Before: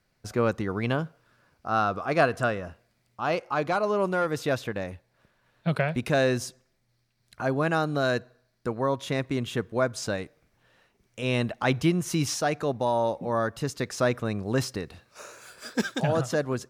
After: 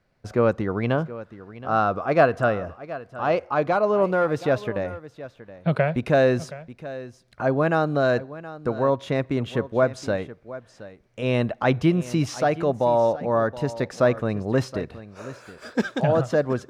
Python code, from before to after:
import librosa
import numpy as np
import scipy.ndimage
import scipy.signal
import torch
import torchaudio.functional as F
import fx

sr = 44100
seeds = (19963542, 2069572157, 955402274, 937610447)

y = fx.lowpass(x, sr, hz=2100.0, slope=6)
y = fx.peak_eq(y, sr, hz=580.0, db=3.5, octaves=0.6)
y = y + 10.0 ** (-16.0 / 20.0) * np.pad(y, (int(722 * sr / 1000.0), 0))[:len(y)]
y = y * librosa.db_to_amplitude(3.5)